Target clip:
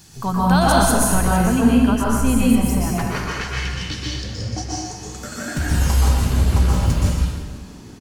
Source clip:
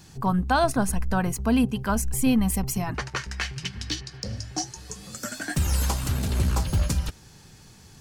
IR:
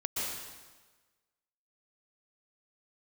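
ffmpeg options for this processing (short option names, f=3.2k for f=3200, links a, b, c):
-filter_complex "[0:a]asetnsamples=n=441:p=0,asendcmd='1.33 highshelf g -6',highshelf=f=4k:g=8,asplit=6[a][b][c][d][e][f];[b]adelay=329,afreqshift=65,volume=-22dB[g];[c]adelay=658,afreqshift=130,volume=-26.4dB[h];[d]adelay=987,afreqshift=195,volume=-30.9dB[i];[e]adelay=1316,afreqshift=260,volume=-35.3dB[j];[f]adelay=1645,afreqshift=325,volume=-39.7dB[k];[a][g][h][i][j][k]amix=inputs=6:normalize=0[l];[1:a]atrim=start_sample=2205[m];[l][m]afir=irnorm=-1:irlink=0,volume=1.5dB"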